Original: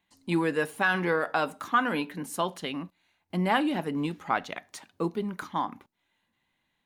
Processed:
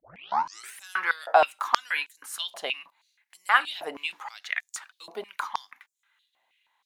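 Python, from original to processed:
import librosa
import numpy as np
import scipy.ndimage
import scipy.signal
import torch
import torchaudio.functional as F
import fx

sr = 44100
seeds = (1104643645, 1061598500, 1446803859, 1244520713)

y = fx.tape_start_head(x, sr, length_s=0.78)
y = fx.filter_held_highpass(y, sr, hz=6.3, low_hz=670.0, high_hz=7100.0)
y = F.gain(torch.from_numpy(y), 1.5).numpy()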